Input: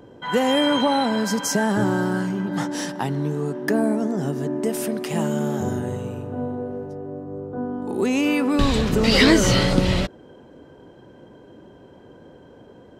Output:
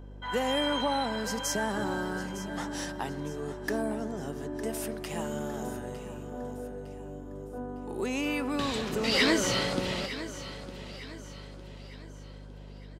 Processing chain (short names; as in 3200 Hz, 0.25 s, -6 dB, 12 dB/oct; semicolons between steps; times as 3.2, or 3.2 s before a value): HPF 390 Hz 6 dB/oct; hum 50 Hz, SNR 12 dB; on a send: feedback echo 0.907 s, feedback 43%, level -13.5 dB; on the sum: gain -7 dB